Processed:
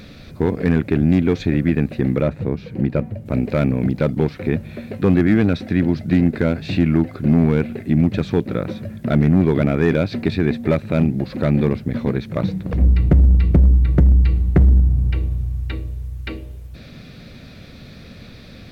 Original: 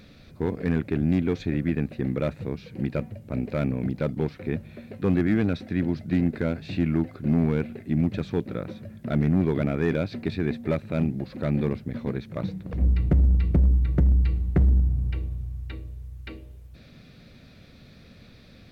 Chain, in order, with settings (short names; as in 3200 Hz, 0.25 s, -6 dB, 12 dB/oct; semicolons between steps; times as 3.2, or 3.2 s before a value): 2.22–3.26 high shelf 2100 Hz -9.5 dB; in parallel at -2.5 dB: compressor, threshold -28 dBFS, peak gain reduction 12.5 dB; on the sum: gain +5.5 dB